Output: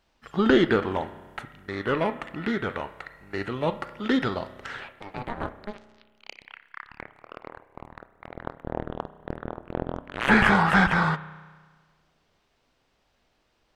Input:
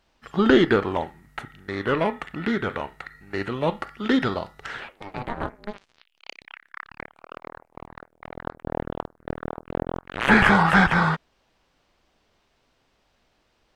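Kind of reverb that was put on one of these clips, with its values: spring tank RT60 1.5 s, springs 32 ms, chirp 55 ms, DRR 14.5 dB; trim -2.5 dB

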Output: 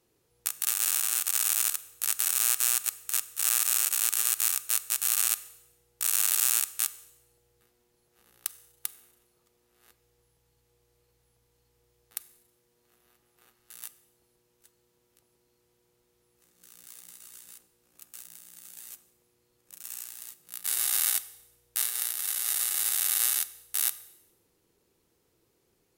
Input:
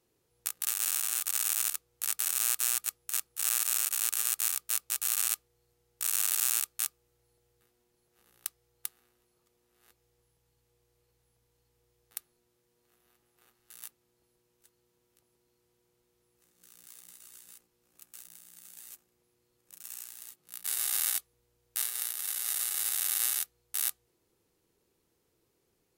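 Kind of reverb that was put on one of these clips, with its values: Schroeder reverb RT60 0.87 s, combs from 31 ms, DRR 16 dB; trim +3.5 dB

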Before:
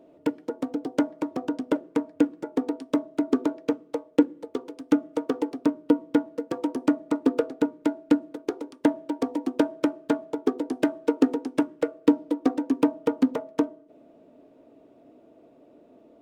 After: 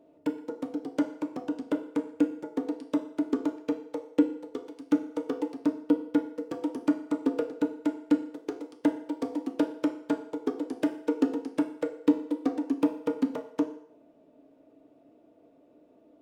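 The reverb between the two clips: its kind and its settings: FDN reverb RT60 0.73 s, low-frequency decay 0.7×, high-frequency decay 0.85×, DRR 6.5 dB; trim -6.5 dB

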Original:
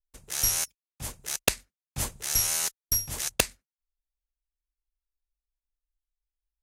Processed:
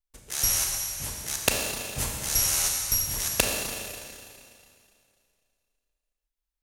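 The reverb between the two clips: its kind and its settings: Schroeder reverb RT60 2.4 s, combs from 28 ms, DRR 0 dB

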